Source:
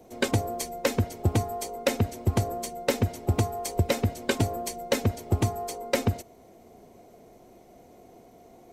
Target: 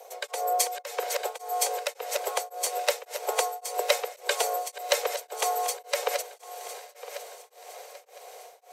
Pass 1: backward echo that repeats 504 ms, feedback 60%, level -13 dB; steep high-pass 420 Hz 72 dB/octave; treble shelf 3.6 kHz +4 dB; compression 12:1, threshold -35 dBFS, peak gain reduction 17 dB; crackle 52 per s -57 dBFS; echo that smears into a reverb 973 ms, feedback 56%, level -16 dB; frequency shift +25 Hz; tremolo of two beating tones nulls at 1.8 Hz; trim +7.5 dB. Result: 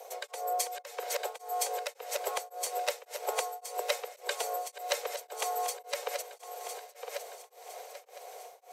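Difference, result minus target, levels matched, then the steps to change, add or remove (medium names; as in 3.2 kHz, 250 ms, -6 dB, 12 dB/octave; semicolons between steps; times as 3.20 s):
compression: peak gain reduction +8 dB
change: compression 12:1, threshold -26 dBFS, peak gain reduction 8.5 dB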